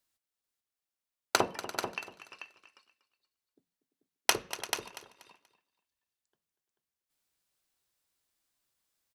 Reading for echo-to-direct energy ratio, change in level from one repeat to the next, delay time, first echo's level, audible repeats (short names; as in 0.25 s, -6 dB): -6.5 dB, no steady repeat, 0.24 s, -14.5 dB, 7